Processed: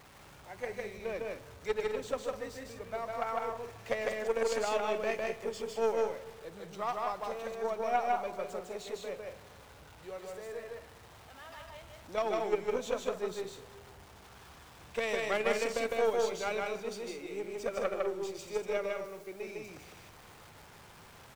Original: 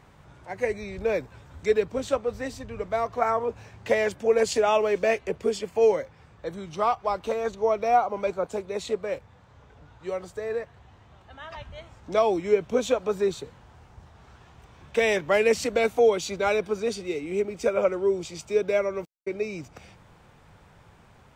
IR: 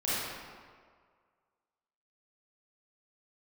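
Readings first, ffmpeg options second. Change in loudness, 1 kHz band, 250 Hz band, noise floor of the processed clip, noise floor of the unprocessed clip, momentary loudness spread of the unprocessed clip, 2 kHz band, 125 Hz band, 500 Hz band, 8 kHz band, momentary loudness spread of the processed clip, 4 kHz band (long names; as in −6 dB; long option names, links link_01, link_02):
−9.0 dB, −7.5 dB, −10.5 dB, −55 dBFS, −55 dBFS, 15 LU, −7.0 dB, −10.5 dB, −9.5 dB, −7.5 dB, 22 LU, −6.5 dB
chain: -filter_complex "[0:a]aeval=exprs='val(0)+0.5*0.0133*sgn(val(0))':channel_layout=same,aeval=exprs='0.335*(cos(1*acos(clip(val(0)/0.335,-1,1)))-cos(1*PI/2))+0.0531*(cos(2*acos(clip(val(0)/0.335,-1,1)))-cos(2*PI/2))+0.0531*(cos(3*acos(clip(val(0)/0.335,-1,1)))-cos(3*PI/2))':channel_layout=same,lowshelf=frequency=310:gain=-6,aecho=1:1:154.5|201.2:0.794|0.316,asplit=2[link_01][link_02];[1:a]atrim=start_sample=2205,asetrate=33075,aresample=44100[link_03];[link_02][link_03]afir=irnorm=-1:irlink=0,volume=-27.5dB[link_04];[link_01][link_04]amix=inputs=2:normalize=0,volume=-7.5dB"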